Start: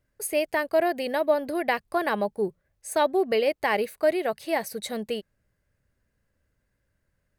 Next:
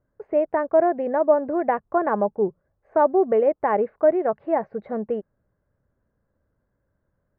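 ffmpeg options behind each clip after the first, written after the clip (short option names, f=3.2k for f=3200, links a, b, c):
-af "lowpass=f=1.3k:w=0.5412,lowpass=f=1.3k:w=1.3066,lowshelf=f=96:g=-7,volume=5dB"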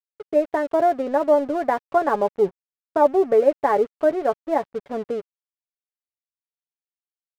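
-af "aecho=1:1:7.1:0.52,aeval=exprs='sgn(val(0))*max(abs(val(0))-0.00841,0)':c=same,volume=1dB"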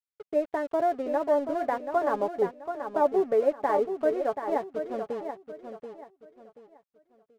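-af "aecho=1:1:732|1464|2196|2928:0.398|0.119|0.0358|0.0107,volume=-7dB"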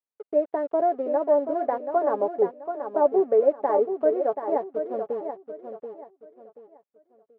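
-af "bandpass=f=500:t=q:w=1:csg=0,volume=4.5dB"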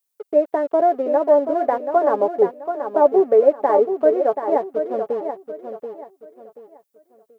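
-af "crystalizer=i=3:c=0,volume=5.5dB"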